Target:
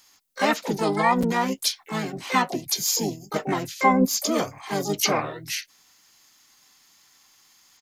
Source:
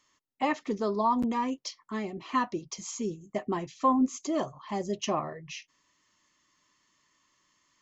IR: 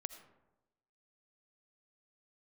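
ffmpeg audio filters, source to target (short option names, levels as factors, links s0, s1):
-filter_complex "[0:a]crystalizer=i=3.5:c=0,asplit=4[s0][s1][s2][s3];[s1]asetrate=33038,aresample=44100,atempo=1.33484,volume=0.708[s4];[s2]asetrate=66075,aresample=44100,atempo=0.66742,volume=0.2[s5];[s3]asetrate=88200,aresample=44100,atempo=0.5,volume=0.501[s6];[s0][s4][s5][s6]amix=inputs=4:normalize=0,volume=1.33"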